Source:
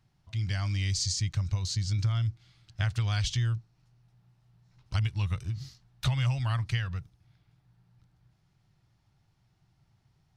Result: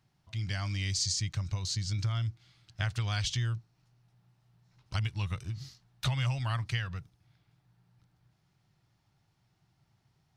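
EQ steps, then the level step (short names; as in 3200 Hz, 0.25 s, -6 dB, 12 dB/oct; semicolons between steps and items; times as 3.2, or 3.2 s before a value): low shelf 83 Hz -10.5 dB; 0.0 dB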